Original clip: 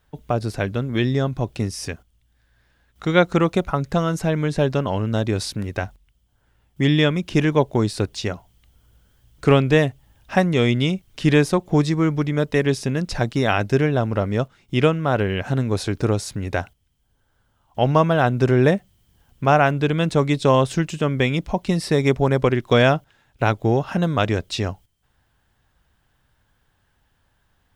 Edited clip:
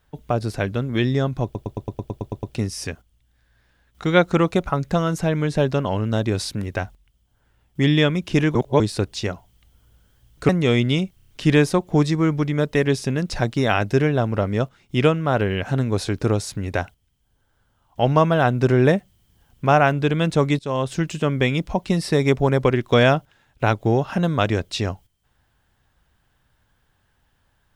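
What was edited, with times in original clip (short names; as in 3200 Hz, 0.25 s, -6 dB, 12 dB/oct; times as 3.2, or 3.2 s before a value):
1.44 stutter 0.11 s, 10 plays
7.56–7.81 reverse
9.5–10.4 cut
11.07 stutter 0.03 s, 5 plays
20.38–20.89 fade in, from -16.5 dB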